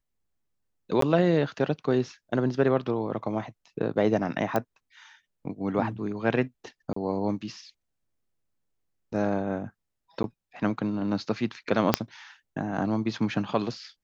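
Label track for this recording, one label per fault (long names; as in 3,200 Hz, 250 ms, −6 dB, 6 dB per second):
1.010000	1.020000	drop-out 13 ms
4.560000	4.560000	click −13 dBFS
6.930000	6.960000	drop-out 34 ms
10.230000	10.240000	drop-out 11 ms
11.940000	11.940000	click −4 dBFS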